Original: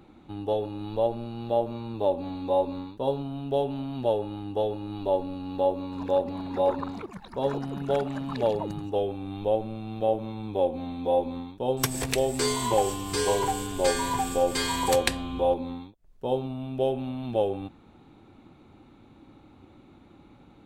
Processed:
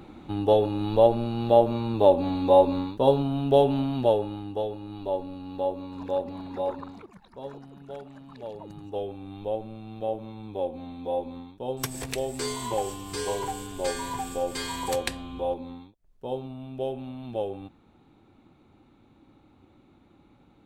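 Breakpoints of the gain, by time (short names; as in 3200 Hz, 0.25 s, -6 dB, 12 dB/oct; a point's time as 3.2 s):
3.79 s +7 dB
4.7 s -3.5 dB
6.44 s -3.5 dB
7.74 s -14 dB
8.44 s -14 dB
8.97 s -5 dB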